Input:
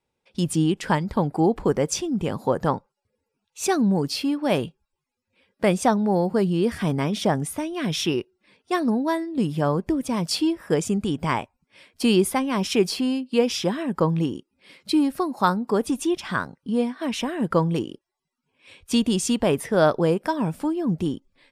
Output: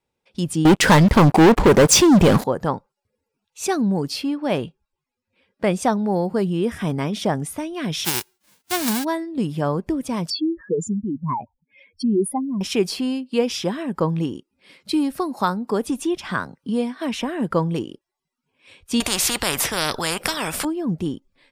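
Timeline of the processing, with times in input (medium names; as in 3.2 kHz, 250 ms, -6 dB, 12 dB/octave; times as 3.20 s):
0.65–2.44 s: waveshaping leveller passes 5
4.21–5.74 s: treble shelf 7.2 kHz -8 dB
6.45–6.90 s: Butterworth band-stop 4.5 kHz, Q 6.2
8.04–9.03 s: formants flattened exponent 0.1
10.30–12.61 s: spectral contrast enhancement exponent 3.3
14.93–17.49 s: three bands compressed up and down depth 40%
19.00–20.65 s: spectrum-flattening compressor 4:1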